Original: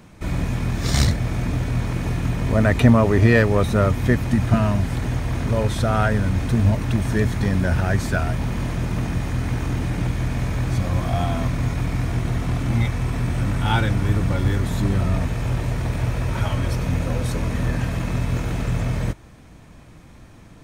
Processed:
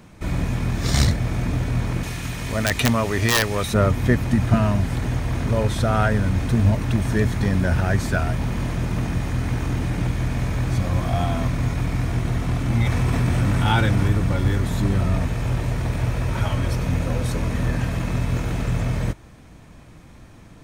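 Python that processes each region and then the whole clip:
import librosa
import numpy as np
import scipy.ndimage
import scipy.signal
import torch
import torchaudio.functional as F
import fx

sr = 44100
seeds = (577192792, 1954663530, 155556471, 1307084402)

y = fx.chain(x, sr, fx.tilt_shelf(db=-7.0, hz=1500.0),
    fx.overflow_wrap(gain_db=8.5), at=(2.03, 3.74))
y = fx.chain(y, sr, fx.highpass(hz=46.0, slope=12),
    fx.env_flatten(amount_pct=50), at=(12.86, 14.08))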